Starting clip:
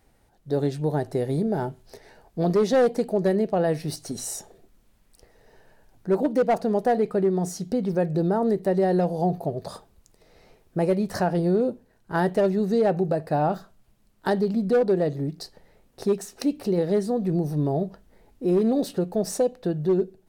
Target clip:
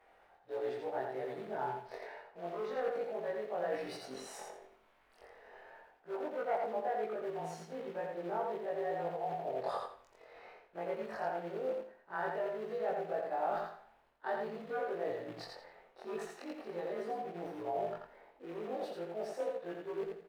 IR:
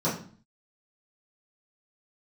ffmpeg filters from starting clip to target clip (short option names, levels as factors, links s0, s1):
-filter_complex "[0:a]afftfilt=real='re':imag='-im':win_size=2048:overlap=0.75,bandreject=f=60:t=h:w=6,bandreject=f=120:t=h:w=6,areverse,acompressor=threshold=0.0126:ratio=12,areverse,flanger=delay=9.6:depth=7.2:regen=-88:speed=0.33:shape=triangular,acrusher=bits=5:mode=log:mix=0:aa=0.000001,acrossover=split=480 2800:gain=0.0708 1 0.0631[s0][s1][s2];[s0][s1][s2]amix=inputs=3:normalize=0,asplit=2[s3][s4];[s4]aecho=0:1:85|170|255|340:0.668|0.167|0.0418|0.0104[s5];[s3][s5]amix=inputs=2:normalize=0,volume=4.73"